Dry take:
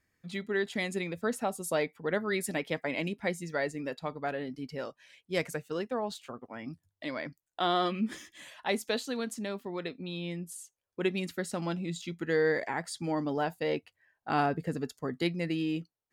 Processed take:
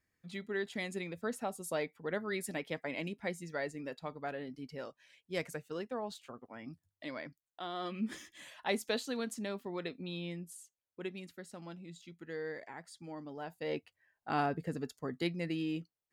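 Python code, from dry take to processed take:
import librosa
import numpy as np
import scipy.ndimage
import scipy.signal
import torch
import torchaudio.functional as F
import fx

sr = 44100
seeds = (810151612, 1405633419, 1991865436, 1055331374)

y = fx.gain(x, sr, db=fx.line((7.18, -6.0), (7.71, -14.0), (8.1, -3.0), (10.14, -3.0), (11.33, -14.0), (13.37, -14.0), (13.77, -4.5)))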